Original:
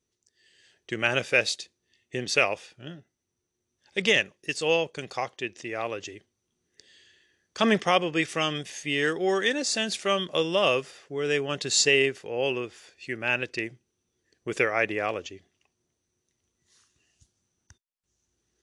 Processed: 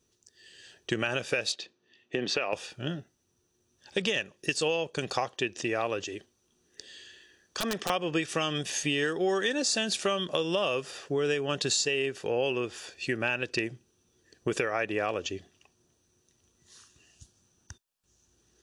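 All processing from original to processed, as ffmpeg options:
-filter_complex "[0:a]asettb=1/sr,asplit=3[a][b][c];[a]atrim=end=1.524[d];[b]atrim=start=1.52:end=2.53,asetpts=PTS-STARTPTS,afade=t=in:d=0.004:c=qsin,afade=t=out:st=1.006:d=0.004:c=qsin,highpass=190,lowpass=3.3k,acompressor=threshold=-30dB:ratio=2.5:attack=3.2:release=140:knee=1:detection=peak[e];[c]atrim=start=2.526[f];[d][e]acrossfade=d=0.004:c1=hsin:c2=qsin[g];[g][f]acrossfade=d=0.004:c1=qsin:c2=hsin,asettb=1/sr,asplit=3[h][i][j];[h]atrim=end=6.024[k];[i]atrim=start=6.02:end=7.9,asetpts=PTS-STARTPTS,afade=t=in:d=0.004:c=qsin,afade=t=out:st=1.876:d=0.004:c=qsin,equalizer=f=120:w=1.1:g=-6,acompressor=threshold=-41dB:ratio=2.5:attack=3.2:release=140:knee=1:detection=peak,aeval=exprs='(mod(21.1*val(0)+1,2)-1)/21.1':c=same[l];[j]atrim=start=7.896[m];[k][l]acrossfade=d=0.004:c1=hsin:c2=qsin[n];[n][m]acrossfade=d=0.004:c1=qsin:c2=hsin,bandreject=f=2.1k:w=5.7,alimiter=limit=-15.5dB:level=0:latency=1:release=235,acompressor=threshold=-35dB:ratio=4,volume=8.5dB"

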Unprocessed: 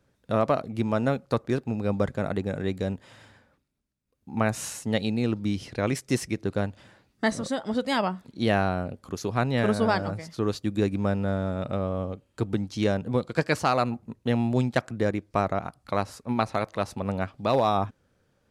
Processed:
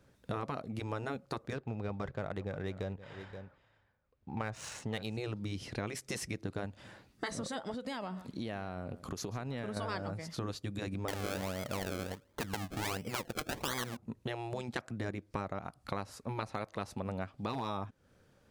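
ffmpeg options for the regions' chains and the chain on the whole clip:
-filter_complex "[0:a]asettb=1/sr,asplit=3[a][b][c];[a]atrim=end=1.534[d];[b]atrim=start=1.53:end=5.17,asetpts=PTS-STARTPTS,afade=t=in:d=0.004:c=qsin,afade=t=out:st=3.636:d=0.004:c=qsin,equalizer=f=240:t=o:w=0.99:g=-8,adynamicsmooth=sensitivity=6:basefreq=3.1k,aecho=1:1:525:0.112,atrim=end_sample=160524[e];[c]atrim=start=5.166[f];[d][e]acrossfade=d=0.004:c1=hsin:c2=qsin[g];[g][f]acrossfade=d=0.004:c1=qsin:c2=hsin,asettb=1/sr,asplit=3[h][i][j];[h]atrim=end=7.744[k];[i]atrim=start=7.74:end=9.77,asetpts=PTS-STARTPTS,afade=t=in:d=0.004:c=qsin,afade=t=out:st=2.026:d=0.004:c=qsin,acompressor=threshold=-34dB:ratio=4:attack=3.2:release=140:knee=1:detection=peak,aecho=1:1:140:0.126,atrim=end_sample=89523[l];[j]atrim=start=9.766[m];[k][l]acrossfade=d=0.004:c1=hsin:c2=qsin[n];[n][m]acrossfade=d=0.004:c1=qsin:c2=hsin,asettb=1/sr,asplit=3[o][p][q];[o]atrim=end=11.084[r];[p]atrim=start=11.08:end=13.97,asetpts=PTS-STARTPTS,afade=t=in:d=0.004:c=qsin,afade=t=out:st=2.886:d=0.004:c=qsin,equalizer=f=610:t=o:w=1.6:g=5,acrusher=samples=32:mix=1:aa=0.000001:lfo=1:lforange=32:lforate=1.4[s];[q]atrim=start=13.966[t];[r][s]acrossfade=d=0.004:c1=hsin:c2=qsin[u];[u][t]acrossfade=d=0.004:c1=qsin:c2=hsin,afftfilt=real='re*lt(hypot(re,im),0.355)':imag='im*lt(hypot(re,im),0.355)':win_size=1024:overlap=0.75,acompressor=threshold=-39dB:ratio=4,volume=2.5dB"

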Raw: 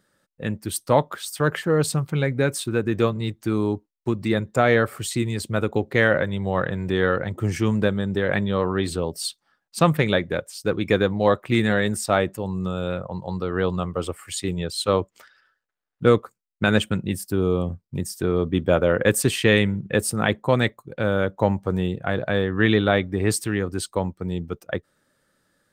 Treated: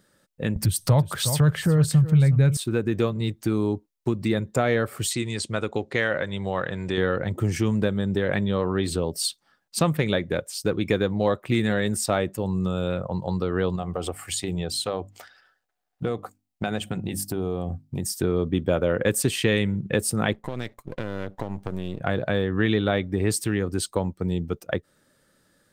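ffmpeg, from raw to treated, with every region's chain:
-filter_complex "[0:a]asettb=1/sr,asplit=3[a][b][c];[a]atrim=end=0.564[d];[b]atrim=start=0.56:end=2.57,asetpts=PTS-STARTPTS,afade=t=in:d=0.004:c=qsin,afade=t=out:st=2.006:d=0.004:c=qsin,lowshelf=f=190:t=q:w=1.5:g=12,acompressor=mode=upward:threshold=-17dB:ratio=2.5:attack=3.2:release=140:knee=2.83:detection=peak,aecho=1:1:363:0.211,atrim=end_sample=88641[e];[c]atrim=start=2.566[f];[d][e]acrossfade=d=0.004:c1=hsin:c2=qsin[g];[g][f]acrossfade=d=0.004:c1=qsin:c2=hsin,asettb=1/sr,asplit=3[h][i][j];[h]atrim=end=5.134[k];[i]atrim=start=5.13:end=6.98,asetpts=PTS-STARTPTS,afade=t=in:d=0.004:c=qsin,afade=t=out:st=1.846:d=0.004:c=qsin,lowpass=f=8.8k:w=0.5412,lowpass=f=8.8k:w=1.3066,lowshelf=f=480:g=-9[l];[j]atrim=start=6.976[m];[k][l]acrossfade=d=0.004:c1=hsin:c2=qsin[n];[n][m]acrossfade=d=0.004:c1=qsin:c2=hsin,asettb=1/sr,asplit=3[o][p][q];[o]atrim=end=13.764[r];[p]atrim=start=13.76:end=18.04,asetpts=PTS-STARTPTS,afade=t=in:d=0.004:c=qsin,afade=t=out:st=4.276:d=0.004:c=qsin,equalizer=f=740:t=o:w=0.28:g=13.5,acompressor=threshold=-29dB:ratio=2.5:attack=3.2:release=140:knee=1:detection=peak,bandreject=f=50:t=h:w=6,bandreject=f=100:t=h:w=6,bandreject=f=150:t=h:w=6,bandreject=f=200:t=h:w=6,bandreject=f=250:t=h:w=6,bandreject=f=300:t=h:w=6[s];[q]atrim=start=18.036[t];[r][s]acrossfade=d=0.004:c1=hsin:c2=qsin[u];[u][t]acrossfade=d=0.004:c1=qsin:c2=hsin,asettb=1/sr,asplit=3[v][w][x];[v]atrim=end=20.334[y];[w]atrim=start=20.33:end=22.01,asetpts=PTS-STARTPTS,afade=t=in:d=0.004:c=qsin,afade=t=out:st=1.676:d=0.004:c=qsin,aeval=exprs='if(lt(val(0),0),0.251*val(0),val(0))':c=same,acompressor=threshold=-28dB:ratio=8:attack=3.2:release=140:knee=1:detection=peak[z];[x]atrim=start=22.006[aa];[y][z]acrossfade=d=0.004:c1=hsin:c2=qsin[ab];[ab][aa]acrossfade=d=0.004:c1=qsin:c2=hsin,equalizer=f=1.3k:t=o:w=1.9:g=-3.5,acompressor=threshold=-29dB:ratio=2,volume=5dB"

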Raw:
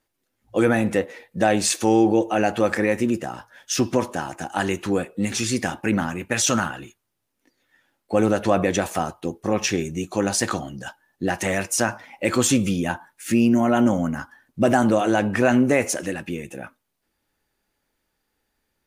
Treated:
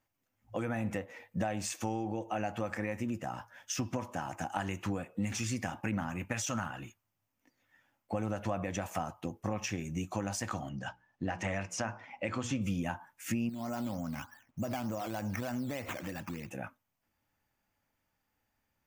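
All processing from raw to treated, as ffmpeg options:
-filter_complex "[0:a]asettb=1/sr,asplit=3[a][b][c];[a]atrim=end=10.694[d];[b]atrim=start=10.69:end=12.62,asetpts=PTS-STARTPTS,afade=t=in:d=0.004:c=qsin,afade=t=out:st=1.926:d=0.004:c=qsin,lowpass=5.1k,bandreject=f=60:t=h:w=6,bandreject=f=120:t=h:w=6,bandreject=f=180:t=h:w=6,bandreject=f=240:t=h:w=6,bandreject=f=300:t=h:w=6,bandreject=f=360:t=h:w=6,bandreject=f=420:t=h:w=6,bandreject=f=480:t=h:w=6[e];[c]atrim=start=12.616[f];[d][e]acrossfade=d=0.004:c1=hsin:c2=qsin[g];[g][f]acrossfade=d=0.004:c1=qsin:c2=hsin,asettb=1/sr,asplit=3[h][i][j];[h]atrim=end=13.494[k];[i]atrim=start=13.49:end=16.51,asetpts=PTS-STARTPTS,afade=t=in:d=0.004:c=qsin,afade=t=out:st=3.016:d=0.004:c=qsin,acrusher=samples=9:mix=1:aa=0.000001:lfo=1:lforange=5.4:lforate=3.3,acompressor=threshold=-34dB:ratio=2:attack=3.2:release=140:knee=1:detection=peak[l];[j]atrim=start=16.506[m];[k][l]acrossfade=d=0.004:c1=hsin:c2=qsin[n];[n][m]acrossfade=d=0.004:c1=qsin:c2=hsin,lowshelf=f=140:g=-7,acompressor=threshold=-28dB:ratio=4,equalizer=f=100:t=o:w=0.67:g=8,equalizer=f=400:t=o:w=0.67:g=-11,equalizer=f=1.6k:t=o:w=0.67:g=-4,equalizer=f=4k:t=o:w=0.67:g=-10,equalizer=f=10k:t=o:w=0.67:g=-11,volume=-1.5dB"

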